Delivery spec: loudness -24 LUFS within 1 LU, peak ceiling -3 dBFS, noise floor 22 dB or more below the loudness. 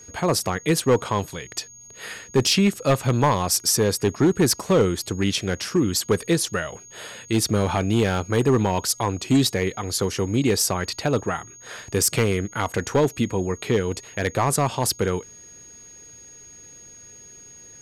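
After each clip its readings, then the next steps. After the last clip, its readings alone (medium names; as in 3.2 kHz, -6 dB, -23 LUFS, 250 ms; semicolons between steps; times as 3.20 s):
clipped samples 1.0%; clipping level -12.0 dBFS; steady tone 6.6 kHz; tone level -43 dBFS; loudness -22.5 LUFS; peak level -12.0 dBFS; loudness target -24.0 LUFS
-> clip repair -12 dBFS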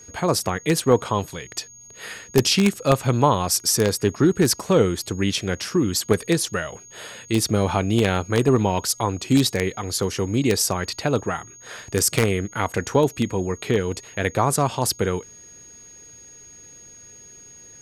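clipped samples 0.0%; steady tone 6.6 kHz; tone level -43 dBFS
-> band-stop 6.6 kHz, Q 30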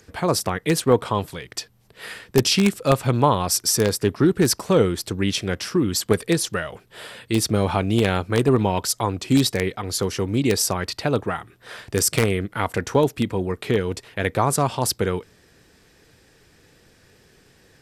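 steady tone not found; loudness -21.5 LUFS; peak level -3.0 dBFS; loudness target -24.0 LUFS
-> trim -2.5 dB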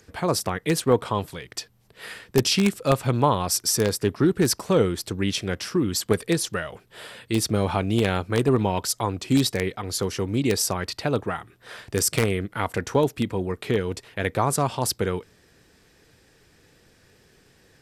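loudness -24.0 LUFS; peak level -5.5 dBFS; noise floor -59 dBFS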